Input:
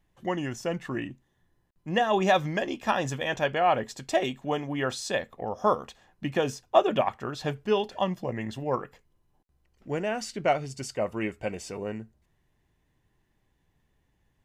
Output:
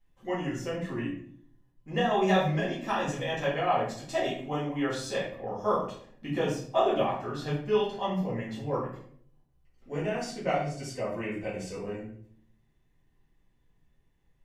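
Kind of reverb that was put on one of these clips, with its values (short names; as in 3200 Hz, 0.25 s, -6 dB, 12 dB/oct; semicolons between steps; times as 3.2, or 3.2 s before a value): shoebox room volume 83 m³, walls mixed, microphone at 2 m; gain -11.5 dB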